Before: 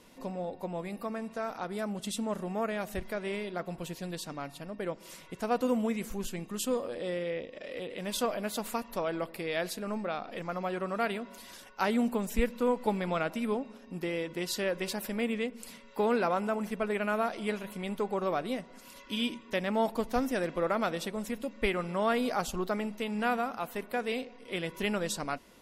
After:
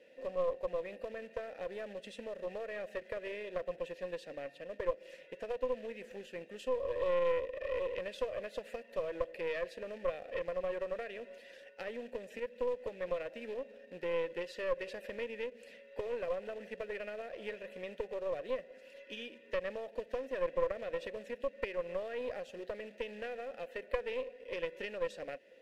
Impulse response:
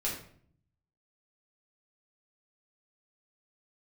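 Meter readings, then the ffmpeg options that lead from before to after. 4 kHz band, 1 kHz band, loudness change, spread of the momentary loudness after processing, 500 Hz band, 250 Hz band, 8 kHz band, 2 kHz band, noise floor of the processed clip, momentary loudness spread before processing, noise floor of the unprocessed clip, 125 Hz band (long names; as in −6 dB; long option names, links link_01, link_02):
−11.5 dB, −12.0 dB, −6.5 dB, 9 LU, −3.0 dB, −17.5 dB, below −20 dB, −7.5 dB, −58 dBFS, 9 LU, −53 dBFS, −16.0 dB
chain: -filter_complex "[0:a]acompressor=threshold=-33dB:ratio=16,acrusher=bits=3:mode=log:mix=0:aa=0.000001,asplit=3[link_01][link_02][link_03];[link_01]bandpass=frequency=530:width_type=q:width=8,volume=0dB[link_04];[link_02]bandpass=frequency=1840:width_type=q:width=8,volume=-6dB[link_05];[link_03]bandpass=frequency=2480:width_type=q:width=8,volume=-9dB[link_06];[link_04][link_05][link_06]amix=inputs=3:normalize=0,aeval=exprs='0.0316*(cos(1*acos(clip(val(0)/0.0316,-1,1)))-cos(1*PI/2))+0.0141*(cos(2*acos(clip(val(0)/0.0316,-1,1)))-cos(2*PI/2))':channel_layout=same,volume=8dB"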